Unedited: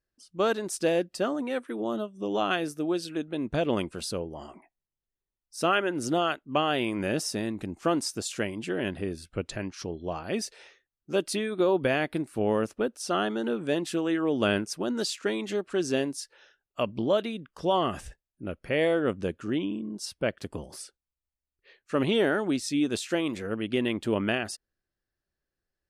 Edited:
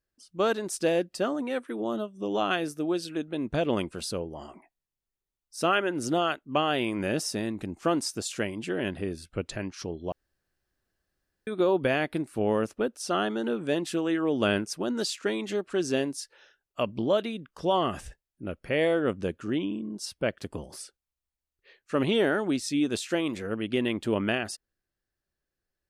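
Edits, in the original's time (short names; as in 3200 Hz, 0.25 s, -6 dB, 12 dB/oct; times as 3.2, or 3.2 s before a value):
10.12–11.47 room tone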